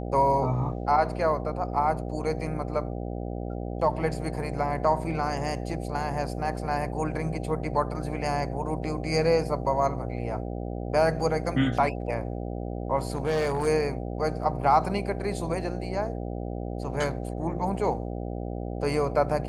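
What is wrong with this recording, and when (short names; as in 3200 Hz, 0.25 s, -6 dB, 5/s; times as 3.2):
buzz 60 Hz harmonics 13 -33 dBFS
13.05–13.68 clipped -21.5 dBFS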